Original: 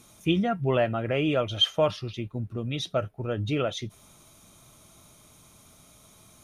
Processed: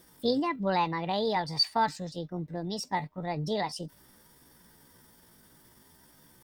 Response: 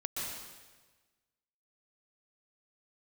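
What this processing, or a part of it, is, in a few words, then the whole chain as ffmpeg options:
chipmunk voice: -af "asetrate=64194,aresample=44100,atempo=0.686977,volume=-3.5dB"

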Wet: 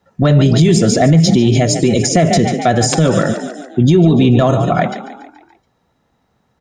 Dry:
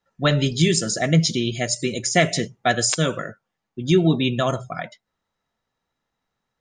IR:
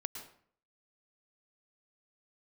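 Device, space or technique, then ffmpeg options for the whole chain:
mastering chain: -filter_complex "[0:a]asplit=6[link_01][link_02][link_03][link_04][link_05][link_06];[link_02]adelay=142,afreqshift=34,volume=-15dB[link_07];[link_03]adelay=284,afreqshift=68,volume=-20.2dB[link_08];[link_04]adelay=426,afreqshift=102,volume=-25.4dB[link_09];[link_05]adelay=568,afreqshift=136,volume=-30.6dB[link_10];[link_06]adelay=710,afreqshift=170,volume=-35.8dB[link_11];[link_01][link_07][link_08][link_09][link_10][link_11]amix=inputs=6:normalize=0,highpass=47,equalizer=frequency=760:width_type=o:width=0.67:gain=3,acrossover=split=1100|7700[link_12][link_13][link_14];[link_12]acompressor=threshold=-16dB:ratio=4[link_15];[link_13]acompressor=threshold=-26dB:ratio=4[link_16];[link_14]acompressor=threshold=-36dB:ratio=4[link_17];[link_15][link_16][link_17]amix=inputs=3:normalize=0,acompressor=threshold=-22dB:ratio=2,asoftclip=type=tanh:threshold=-12.5dB,tiltshelf=frequency=650:gain=5.5,alimiter=level_in=18dB:limit=-1dB:release=50:level=0:latency=1,volume=-2dB"

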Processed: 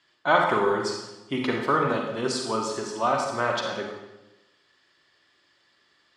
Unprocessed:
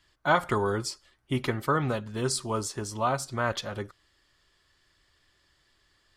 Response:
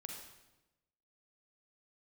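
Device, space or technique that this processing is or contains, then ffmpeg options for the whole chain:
supermarket ceiling speaker: -filter_complex "[0:a]highpass=230,lowpass=5600[link_01];[1:a]atrim=start_sample=2205[link_02];[link_01][link_02]afir=irnorm=-1:irlink=0,volume=8dB"

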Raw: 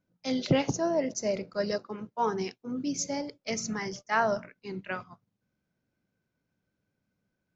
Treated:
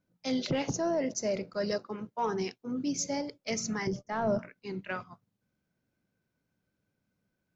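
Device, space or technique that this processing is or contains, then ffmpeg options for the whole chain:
soft clipper into limiter: -filter_complex "[0:a]asoftclip=type=tanh:threshold=-16dB,alimiter=limit=-22.5dB:level=0:latency=1:release=14,asettb=1/sr,asplit=3[link_01][link_02][link_03];[link_01]atrim=end=3.874[link_04];[link_02]atrim=start=3.87:end=4.39,asetpts=PTS-STARTPTS,afade=type=in:duration=0.004:curve=qsin,afade=type=out:start_time=0.516:duration=0.004:curve=qsin,tiltshelf=frequency=770:gain=9.5[link_05];[link_03]atrim=start=4.386[link_06];[link_04][link_05]acrossfade=duration=0.004:curve1=hsin:curve2=qsin[link_07];[link_07][link_06]acrossfade=duration=0.004:curve1=qsin:curve2=hsin"

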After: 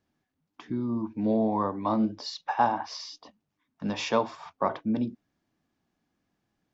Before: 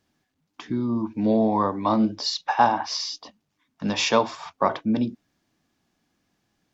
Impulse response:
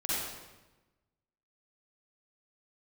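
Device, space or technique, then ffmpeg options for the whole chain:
behind a face mask: -af "highshelf=frequency=2600:gain=-8,volume=-4.5dB"

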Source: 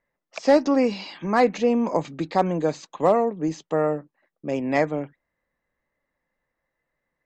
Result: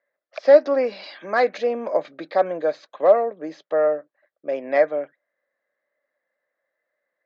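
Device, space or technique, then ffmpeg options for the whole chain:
phone earpiece: -filter_complex "[0:a]highpass=470,equalizer=frequency=590:width_type=q:width=4:gain=10,equalizer=frequency=920:width_type=q:width=4:gain=-8,equalizer=frequency=1600:width_type=q:width=4:gain=5,equalizer=frequency=2800:width_type=q:width=4:gain=-7,lowpass=frequency=4300:width=0.5412,lowpass=frequency=4300:width=1.3066,asettb=1/sr,asplit=3[link_01][link_02][link_03];[link_01]atrim=end=1.034[link_04];[link_02]atrim=start=1.03:end=1.67,asetpts=PTS-STARTPTS,afade=type=in:duration=0.004:curve=qsin,afade=type=out:start_time=0.636:duration=0.004:curve=qsin,aemphasis=mode=production:type=50fm[link_05];[link_03]atrim=start=1.666[link_06];[link_04][link_05]acrossfade=duration=0.004:curve1=hsin:curve2=qsin[link_07];[link_07][link_06]acrossfade=duration=0.004:curve1=qsin:curve2=hsin"

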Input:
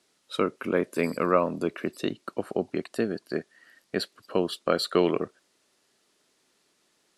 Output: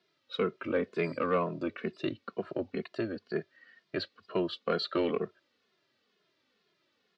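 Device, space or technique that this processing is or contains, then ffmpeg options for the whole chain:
barber-pole flanger into a guitar amplifier: -filter_complex "[0:a]asplit=2[link_01][link_02];[link_02]adelay=2.4,afreqshift=-2.1[link_03];[link_01][link_03]amix=inputs=2:normalize=1,asoftclip=type=tanh:threshold=-17.5dB,highpass=90,equalizer=frequency=97:width_type=q:width=4:gain=5,equalizer=frequency=290:width_type=q:width=4:gain=-3,equalizer=frequency=840:width_type=q:width=4:gain=-6,lowpass=frequency=4400:width=0.5412,lowpass=frequency=4400:width=1.3066"

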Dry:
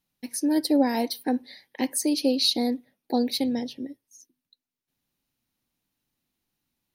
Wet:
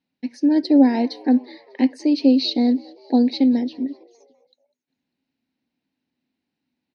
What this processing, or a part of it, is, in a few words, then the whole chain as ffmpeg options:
frequency-shifting delay pedal into a guitar cabinet: -filter_complex "[0:a]asplit=5[link_01][link_02][link_03][link_04][link_05];[link_02]adelay=199,afreqshift=75,volume=-23dB[link_06];[link_03]adelay=398,afreqshift=150,volume=-27.6dB[link_07];[link_04]adelay=597,afreqshift=225,volume=-32.2dB[link_08];[link_05]adelay=796,afreqshift=300,volume=-36.7dB[link_09];[link_01][link_06][link_07][link_08][link_09]amix=inputs=5:normalize=0,highpass=110,equalizer=frequency=120:width_type=q:width=4:gain=-7,equalizer=frequency=260:width_type=q:width=4:gain=9,equalizer=frequency=1200:width_type=q:width=4:gain=-9,equalizer=frequency=3300:width_type=q:width=4:gain=-6,lowpass=frequency=4300:width=0.5412,lowpass=frequency=4300:width=1.3066,volume=2.5dB"

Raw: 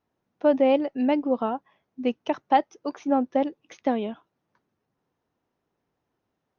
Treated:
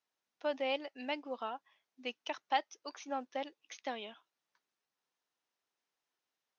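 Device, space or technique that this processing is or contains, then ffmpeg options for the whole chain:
piezo pickup straight into a mixer: -af "lowpass=5700,aderivative,volume=6.5dB"

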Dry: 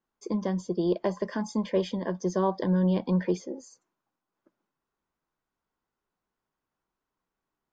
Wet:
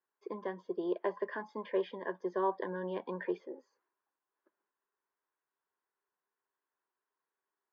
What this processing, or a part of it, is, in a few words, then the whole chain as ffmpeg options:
phone earpiece: -af "highpass=400,equalizer=frequency=400:width_type=q:width=4:gain=8,equalizer=frequency=1000:width_type=q:width=4:gain=6,equalizer=frequency=1700:width_type=q:width=4:gain=9,lowpass=frequency=3300:width=0.5412,lowpass=frequency=3300:width=1.3066,volume=-8dB"

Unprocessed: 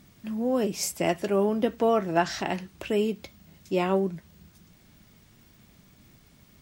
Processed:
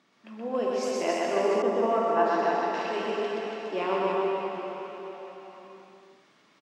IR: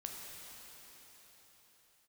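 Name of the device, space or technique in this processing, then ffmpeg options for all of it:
station announcement: -filter_complex "[0:a]highpass=340,lowpass=4300,equalizer=frequency=1100:width_type=o:width=0.48:gain=5.5,aecho=1:1:125.4|282.8:0.794|0.631[link_01];[1:a]atrim=start_sample=2205[link_02];[link_01][link_02]afir=irnorm=-1:irlink=0,highpass=160,asettb=1/sr,asplit=3[link_03][link_04][link_05];[link_03]atrim=end=1.624[link_06];[link_04]atrim=start=1.62:end=2.74,asetpts=PTS-STARTPTS,afade=type=in:duration=0.004:curve=qsin,afade=type=out:start_time=1.116:duration=0.004:curve=qsin,adynamicequalizer=threshold=0.0112:dfrequency=1900:dqfactor=0.7:tfrequency=1900:tqfactor=0.7:attack=5:release=100:ratio=0.375:range=3.5:mode=cutabove:tftype=highshelf[link_07];[link_05]atrim=start=2.736[link_08];[link_06][link_07]acrossfade=duration=0.004:curve1=hsin:curve2=qsin[link_09];[link_09][link_08]acrossfade=duration=0.004:curve1=qsin:curve2=hsin"

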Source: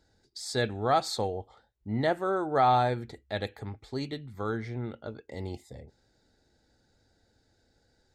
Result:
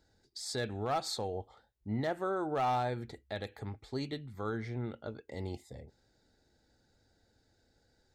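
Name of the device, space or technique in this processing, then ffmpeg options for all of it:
clipper into limiter: -af "asoftclip=type=hard:threshold=-18.5dB,alimiter=limit=-23.5dB:level=0:latency=1:release=107,volume=-2.5dB"

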